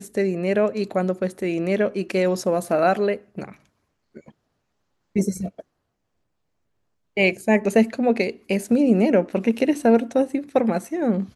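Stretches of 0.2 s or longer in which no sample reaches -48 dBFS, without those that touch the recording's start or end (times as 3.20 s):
3.66–4.15 s
4.31–5.16 s
5.62–7.17 s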